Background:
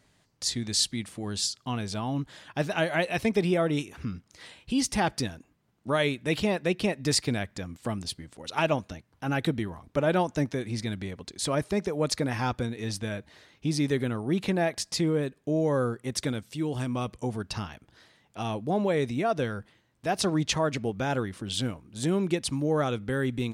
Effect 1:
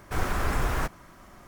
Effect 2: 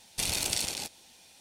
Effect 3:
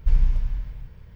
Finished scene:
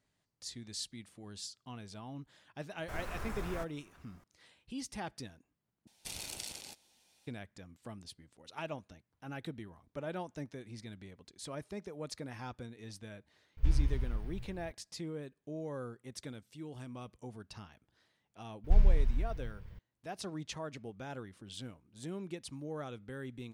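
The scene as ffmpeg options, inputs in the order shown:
ffmpeg -i bed.wav -i cue0.wav -i cue1.wav -i cue2.wav -filter_complex "[3:a]asplit=2[link_01][link_02];[0:a]volume=-15.5dB[link_03];[link_01]asplit=2[link_04][link_05];[link_05]adelay=16,volume=-4.5dB[link_06];[link_04][link_06]amix=inputs=2:normalize=0[link_07];[link_03]asplit=2[link_08][link_09];[link_08]atrim=end=5.874[link_10];[2:a]atrim=end=1.4,asetpts=PTS-STARTPTS,volume=-13dB[link_11];[link_09]atrim=start=7.266[link_12];[1:a]atrim=end=1.47,asetpts=PTS-STARTPTS,volume=-14.5dB,afade=type=in:duration=0.004:curve=hsin,afade=type=out:start_time=1.466:duration=0.004:curve=hsin,adelay=2770[link_13];[link_07]atrim=end=1.15,asetpts=PTS-STARTPTS,volume=-6.5dB,afade=type=in:duration=0.004:curve=hsin,afade=type=out:start_time=1.146:duration=0.004:curve=hsin,adelay=13570[link_14];[link_02]atrim=end=1.15,asetpts=PTS-STARTPTS,volume=-5dB,afade=type=in:duration=0.004:curve=hsin,afade=type=out:start_time=1.146:duration=0.004:curve=hsin,adelay=18640[link_15];[link_10][link_11]acrossfade=duration=0.004:curve1=hsin:curve2=hsin[link_16];[link_16][link_12]acrossfade=duration=0.004:curve1=hsin:curve2=hsin[link_17];[link_17][link_13][link_14][link_15]amix=inputs=4:normalize=0" out.wav

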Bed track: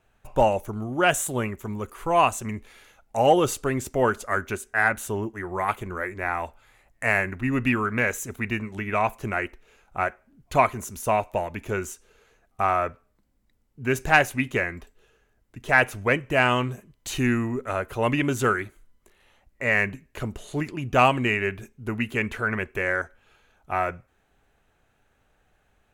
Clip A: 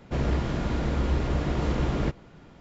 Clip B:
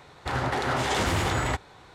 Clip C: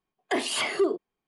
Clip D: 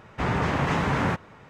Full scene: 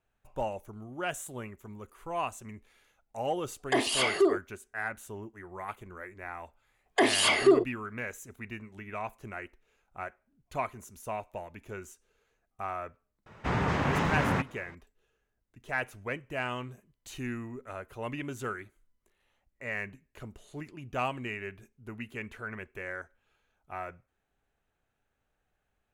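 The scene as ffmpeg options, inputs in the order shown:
ffmpeg -i bed.wav -i cue0.wav -i cue1.wav -i cue2.wav -i cue3.wav -filter_complex "[3:a]asplit=2[link_01][link_02];[0:a]volume=-13.5dB[link_03];[link_02]dynaudnorm=framelen=140:gausssize=3:maxgain=10.5dB[link_04];[link_01]atrim=end=1.27,asetpts=PTS-STARTPTS,afade=type=in:duration=0.004:curve=hsin,afade=type=out:start_time=1.266:duration=0.004:curve=hsin,adelay=150381S[link_05];[link_04]atrim=end=1.27,asetpts=PTS-STARTPTS,volume=-7dB,afade=type=in:duration=0.004:curve=hsin,afade=type=out:start_time=1.266:duration=0.004:curve=hsin,adelay=6670[link_06];[4:a]atrim=end=1.49,asetpts=PTS-STARTPTS,volume=-3.5dB,afade=type=in:duration=0.004:curve=hsin,afade=type=out:start_time=1.486:duration=0.004:curve=hsin,adelay=13260[link_07];[link_03][link_05][link_06][link_07]amix=inputs=4:normalize=0" out.wav

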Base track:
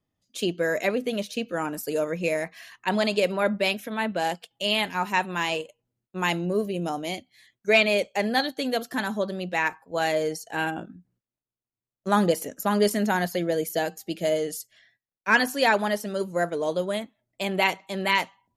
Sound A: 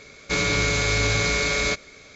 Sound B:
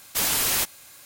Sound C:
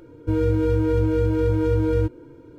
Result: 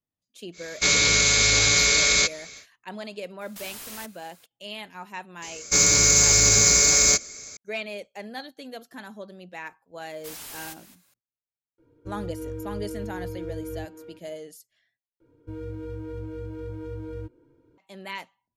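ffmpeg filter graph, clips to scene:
ffmpeg -i bed.wav -i cue0.wav -i cue1.wav -i cue2.wav -filter_complex "[1:a]asplit=2[link_01][link_02];[2:a]asplit=2[link_03][link_04];[3:a]asplit=2[link_05][link_06];[0:a]volume=-13dB[link_07];[link_01]crystalizer=i=6:c=0[link_08];[link_03]alimiter=limit=-23.5dB:level=0:latency=1:release=33[link_09];[link_02]aexciter=amount=6.2:drive=9:freq=5200[link_10];[link_04]aecho=1:1:214:0.2[link_11];[link_05]asplit=2[link_12][link_13];[link_13]adelay=330,highpass=300,lowpass=3400,asoftclip=type=hard:threshold=-19dB,volume=-6dB[link_14];[link_12][link_14]amix=inputs=2:normalize=0[link_15];[link_07]asplit=2[link_16][link_17];[link_16]atrim=end=15.204[link_18];[link_06]atrim=end=2.58,asetpts=PTS-STARTPTS,volume=-15.5dB[link_19];[link_17]atrim=start=17.776[link_20];[link_08]atrim=end=2.15,asetpts=PTS-STARTPTS,volume=-5dB,afade=type=in:duration=0.1,afade=type=out:start_time=2.05:duration=0.1,adelay=520[link_21];[link_09]atrim=end=1.05,asetpts=PTS-STARTPTS,volume=-10dB,afade=type=in:duration=0.004:curve=hsin,afade=type=out:start_time=1.046:duration=0.004:curve=hsin,adelay=150381S[link_22];[link_10]atrim=end=2.15,asetpts=PTS-STARTPTS,volume=-2.5dB,afade=type=in:duration=0.004:curve=hsin,afade=type=out:start_time=2.146:duration=0.004:curve=hsin,adelay=5420[link_23];[link_11]atrim=end=1.05,asetpts=PTS-STARTPTS,volume=-17dB,afade=type=in:duration=0.004:curve=hsin,afade=type=out:start_time=1.046:duration=0.004:curve=hsin,adelay=10090[link_24];[link_15]atrim=end=2.58,asetpts=PTS-STARTPTS,volume=-16dB,afade=type=in:duration=0.004:curve=hsin,afade=type=out:start_time=2.576:duration=0.004:curve=hsin,adelay=519498S[link_25];[link_18][link_19]acrossfade=duration=0.004:curve1=hsin:curve2=hsin[link_26];[link_26][link_20]acrossfade=duration=0.004:curve1=hsin:curve2=hsin[link_27];[link_27][link_21][link_22][link_23][link_24][link_25]amix=inputs=6:normalize=0" out.wav

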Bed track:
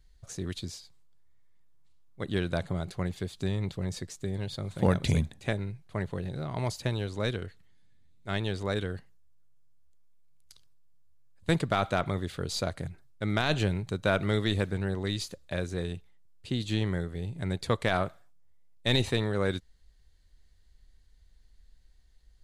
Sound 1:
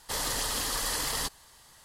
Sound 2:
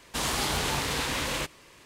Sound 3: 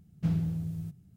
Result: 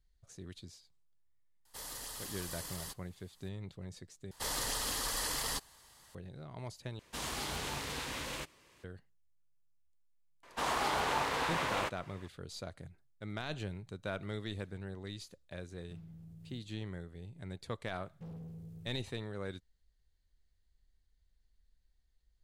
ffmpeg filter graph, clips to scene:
ffmpeg -i bed.wav -i cue0.wav -i cue1.wav -i cue2.wav -filter_complex "[1:a]asplit=2[link_01][link_02];[2:a]asplit=2[link_03][link_04];[3:a]asplit=2[link_05][link_06];[0:a]volume=-13dB[link_07];[link_01]highshelf=frequency=9500:gain=8.5[link_08];[link_04]equalizer=frequency=900:width=0.4:gain=15[link_09];[link_05]acompressor=threshold=-36dB:ratio=6:attack=3.2:release=140:knee=1:detection=peak[link_10];[link_06]asoftclip=type=tanh:threshold=-33dB[link_11];[link_07]asplit=3[link_12][link_13][link_14];[link_12]atrim=end=4.314[link_15];[link_02]atrim=end=1.84,asetpts=PTS-STARTPTS,volume=-5dB[link_16];[link_13]atrim=start=6.146:end=6.994[link_17];[link_03]atrim=end=1.85,asetpts=PTS-STARTPTS,volume=-10.5dB[link_18];[link_14]atrim=start=8.836[link_19];[link_08]atrim=end=1.84,asetpts=PTS-STARTPTS,volume=-16dB,afade=type=in:duration=0.004:curve=hsin,afade=type=out:start_time=1.836:duration=0.004:curve=hsin,adelay=1650[link_20];[link_09]atrim=end=1.85,asetpts=PTS-STARTPTS,volume=-14dB,afade=type=in:duration=0.004:curve=hsin,afade=type=out:start_time=1.846:duration=0.004:curve=hsin,adelay=10430[link_21];[link_10]atrim=end=1.16,asetpts=PTS-STARTPTS,volume=-13dB,afade=type=in:duration=0.004:curve=hsin,afade=type=out:start_time=1.156:duration=0.004:curve=hsin,adelay=15680[link_22];[link_11]atrim=end=1.16,asetpts=PTS-STARTPTS,volume=-11dB,afade=type=in:duration=0.004:curve=hsin,afade=type=out:start_time=1.156:duration=0.004:curve=hsin,adelay=17980[link_23];[link_15][link_16]acrossfade=duration=0.004:curve1=hsin:curve2=hsin[link_24];[link_24][link_17]acrossfade=duration=0.004:curve1=hsin:curve2=hsin[link_25];[link_25][link_18]acrossfade=duration=0.004:curve1=hsin:curve2=hsin[link_26];[link_26][link_19]acrossfade=duration=0.004:curve1=hsin:curve2=hsin[link_27];[link_27][link_20][link_21][link_22][link_23]amix=inputs=5:normalize=0" out.wav

